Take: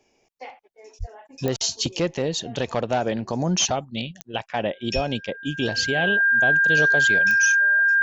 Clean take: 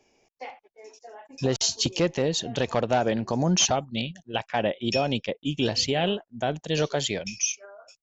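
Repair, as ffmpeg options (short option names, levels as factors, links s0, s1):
-filter_complex "[0:a]adeclick=t=4,bandreject=f=1600:w=30,asplit=3[s0][s1][s2];[s0]afade=t=out:st=0.99:d=0.02[s3];[s1]highpass=f=140:w=0.5412,highpass=f=140:w=1.3066,afade=t=in:st=0.99:d=0.02,afade=t=out:st=1.11:d=0.02[s4];[s2]afade=t=in:st=1.11:d=0.02[s5];[s3][s4][s5]amix=inputs=3:normalize=0,asplit=3[s6][s7][s8];[s6]afade=t=out:st=4.94:d=0.02[s9];[s7]highpass=f=140:w=0.5412,highpass=f=140:w=1.3066,afade=t=in:st=4.94:d=0.02,afade=t=out:st=5.06:d=0.02[s10];[s8]afade=t=in:st=5.06:d=0.02[s11];[s9][s10][s11]amix=inputs=3:normalize=0"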